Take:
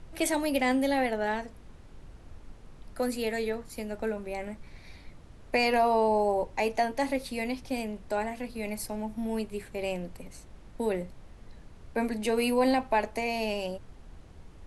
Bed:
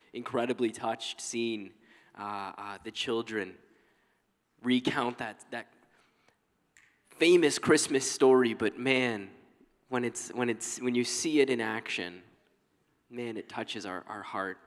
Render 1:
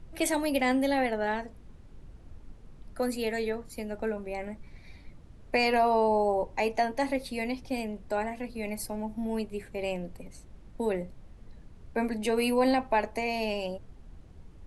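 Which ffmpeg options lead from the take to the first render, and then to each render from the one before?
-af "afftdn=nr=6:nf=-51"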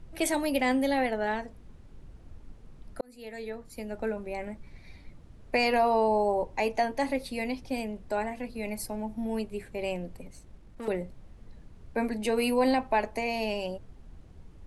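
-filter_complex "[0:a]asettb=1/sr,asplit=3[s0][s1][s2];[s0]atrim=end=10.264[s3];[s1]atrim=start=10.26:end=10.88,asetpts=PTS-STARTPTS,afade=t=in:d=0.004:c=qsin,afade=t=out:st=0.616:d=0.004:c=qsin,aeval=exprs='(tanh(56.2*val(0)+0.4)-tanh(0.4))/56.2':c=same[s4];[s2]atrim=start=10.876[s5];[s3][s4]acrossfade=d=0.004:c1=hsin:c2=qsin[s6];[s6][s5]acrossfade=d=0.004:c1=qsin:c2=hsin,asplit=2[s7][s8];[s7]atrim=end=3.01,asetpts=PTS-STARTPTS,afade=t=out:st=3.006:d=0.004:c=hsin[s9];[s8]atrim=start=3.01,asetpts=PTS-STARTPTS,afade=t=in:d=0.99[s10];[s9][s10]concat=n=2:v=0:a=1"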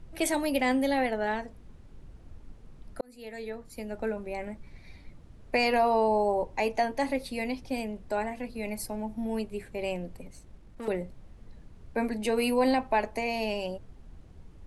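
-af anull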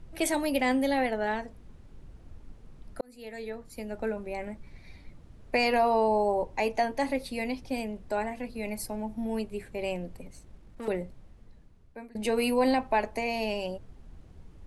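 -filter_complex "[0:a]asplit=2[s0][s1];[s0]atrim=end=12.15,asetpts=PTS-STARTPTS,afade=t=out:st=10.97:d=1.18:silence=0.0668344[s2];[s1]atrim=start=12.15,asetpts=PTS-STARTPTS,afade=t=in:d=0.004:c=hsin:silence=0.0668344[s3];[s2][s3]concat=n=2:v=0:a=1"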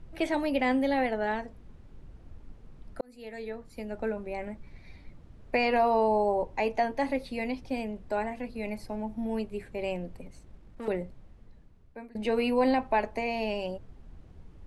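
-filter_complex "[0:a]acrossover=split=4700[s0][s1];[s1]acompressor=threshold=0.00282:ratio=4:attack=1:release=60[s2];[s0][s2]amix=inputs=2:normalize=0,highshelf=f=5800:g=-8"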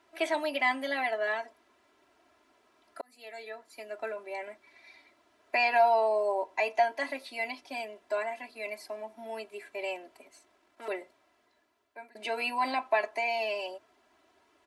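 -af "highpass=690,aecho=1:1:3:0.97"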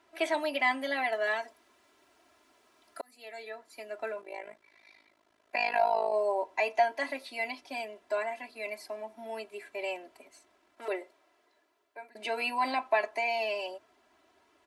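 -filter_complex "[0:a]asettb=1/sr,asplit=3[s0][s1][s2];[s0]atrim=end=1.124[s3];[s1]atrim=start=1.12:end=3.11,asetpts=PTS-STARTPTS,afade=t=in:d=0.004:c=qsin,afade=t=out:st=1.986:d=0.004:c=qsin,highshelf=f=4100:g=8[s4];[s2]atrim=start=3.106[s5];[s3][s4]acrossfade=d=0.004:c1=hsin:c2=qsin[s6];[s6][s5]acrossfade=d=0.004:c1=qsin:c2=hsin,asplit=3[s7][s8][s9];[s7]afade=t=out:st=4.2:d=0.02[s10];[s8]tremolo=f=53:d=0.857,afade=t=in:st=4.2:d=0.02,afade=t=out:st=6.12:d=0.02[s11];[s9]afade=t=in:st=6.12:d=0.02[s12];[s10][s11][s12]amix=inputs=3:normalize=0,asettb=1/sr,asplit=3[s13][s14][s15];[s13]atrim=end=10.854[s16];[s14]atrim=start=10.85:end=12.1,asetpts=PTS-STARTPTS,afade=t=in:d=0.004:c=qsin,afade=t=out:st=1.246:d=0.004:c=qsin,lowshelf=f=260:t=q:w=1.5:g=-8[s17];[s15]atrim=start=12.096[s18];[s16][s17]acrossfade=d=0.004:c1=hsin:c2=qsin[s19];[s19][s18]acrossfade=d=0.004:c1=qsin:c2=hsin"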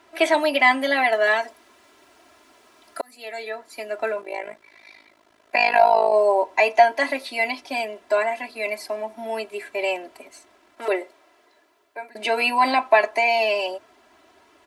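-af "volume=3.55"

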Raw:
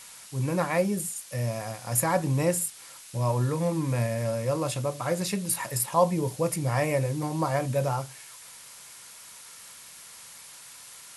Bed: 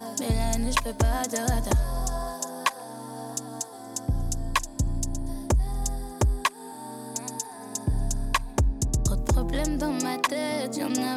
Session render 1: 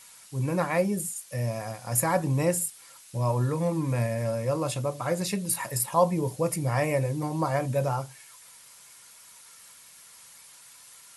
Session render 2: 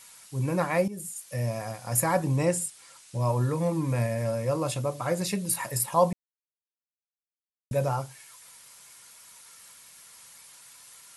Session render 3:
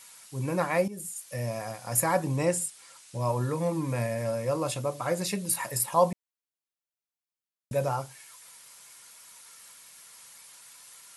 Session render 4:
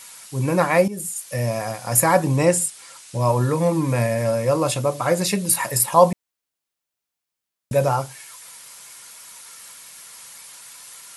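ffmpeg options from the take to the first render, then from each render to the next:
-af "afftdn=nr=6:nf=-47"
-filter_complex "[0:a]asettb=1/sr,asplit=3[s0][s1][s2];[s0]atrim=end=2.364[s3];[s1]atrim=start=2.36:end=3.2,asetpts=PTS-STARTPTS,afade=t=in:d=0.004:c=qsin,afade=t=out:st=0.836:d=0.004:c=qsin,lowpass=f=10000:w=0.5412,lowpass=f=10000:w=1.3066[s4];[s2]atrim=start=3.196[s5];[s3][s4]acrossfade=d=0.004:c1=hsin:c2=qsin[s6];[s6][s5]acrossfade=d=0.004:c1=qsin:c2=hsin,asplit=4[s7][s8][s9][s10];[s7]atrim=end=0.88,asetpts=PTS-STARTPTS,afade=t=out:st=0.876:d=0.004:c=hsin:silence=0.211349[s11];[s8]atrim=start=0.88:end=6.13,asetpts=PTS-STARTPTS,afade=t=in:d=0.4:silence=0.211349,afade=t=out:st=5.246:d=0.004:c=hsin[s12];[s9]atrim=start=6.13:end=7.71,asetpts=PTS-STARTPTS,volume=0[s13];[s10]atrim=start=7.71,asetpts=PTS-STARTPTS,afade=t=in:d=0.004:c=hsin[s14];[s11][s12][s13][s14]concat=n=4:v=0:a=1"
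-af "lowshelf=f=140:g=-7.5"
-af "volume=2.82,alimiter=limit=0.794:level=0:latency=1"

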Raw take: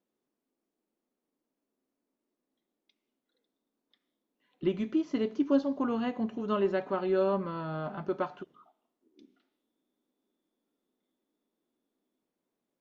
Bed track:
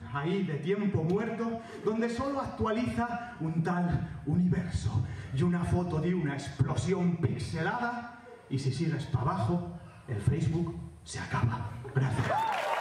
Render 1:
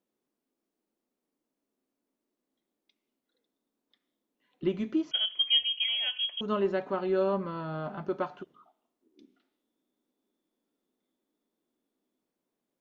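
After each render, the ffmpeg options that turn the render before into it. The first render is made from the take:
-filter_complex "[0:a]asettb=1/sr,asplit=3[s0][s1][s2];[s0]atrim=end=5.114[s3];[s1]atrim=start=5.11:end=6.41,asetpts=PTS-STARTPTS,afade=t=in:d=0.004:c=qsin,afade=t=out:st=1.296:d=0.004:c=qsin,lowpass=f=3000:t=q:w=0.5098,lowpass=f=3000:t=q:w=0.6013,lowpass=f=3000:t=q:w=0.9,lowpass=f=3000:t=q:w=2.563,afreqshift=-3500[s4];[s2]atrim=start=6.406[s5];[s3][s4]acrossfade=d=0.004:c1=hsin:c2=qsin[s6];[s6][s5]acrossfade=d=0.004:c1=qsin:c2=hsin"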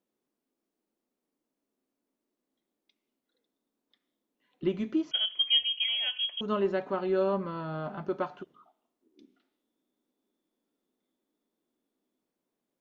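-af anull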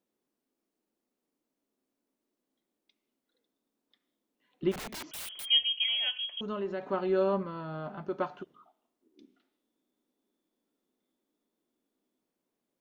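-filter_complex "[0:a]asplit=3[s0][s1][s2];[s0]afade=t=out:st=4.71:d=0.02[s3];[s1]aeval=exprs='(mod(59.6*val(0)+1,2)-1)/59.6':c=same,afade=t=in:st=4.71:d=0.02,afade=t=out:st=5.44:d=0.02[s4];[s2]afade=t=in:st=5.44:d=0.02[s5];[s3][s4][s5]amix=inputs=3:normalize=0,asettb=1/sr,asplit=3[s6][s7][s8];[s6]atrim=end=6.184[s9];[s7]atrim=start=6.18:end=6.83,asetpts=PTS-STARTPTS,afade=t=in:d=0.004:c=qsin,afade=t=out:st=0.646:d=0.004:c=qsin,acompressor=threshold=0.0178:ratio=2:attack=3.2:release=140:knee=1:detection=peak[s10];[s8]atrim=start=6.826[s11];[s9][s10]acrossfade=d=0.004:c1=hsin:c2=qsin[s12];[s12][s11]acrossfade=d=0.004:c1=qsin:c2=hsin,asplit=3[s13][s14][s15];[s13]atrim=end=7.432[s16];[s14]atrim=start=7.428:end=8.182,asetpts=PTS-STARTPTS,volume=0.708[s17];[s15]atrim=start=8.178[s18];[s16][s17]acrossfade=d=0.004:c1=hsin:c2=hsin[s19];[s19][s18]acrossfade=d=0.004:c1=hsin:c2=hsin"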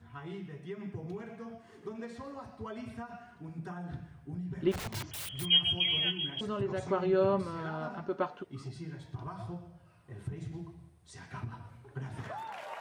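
-filter_complex "[1:a]volume=0.251[s0];[0:a][s0]amix=inputs=2:normalize=0"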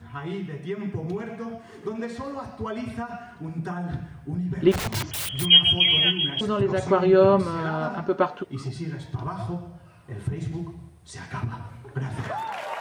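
-af "volume=3.35"

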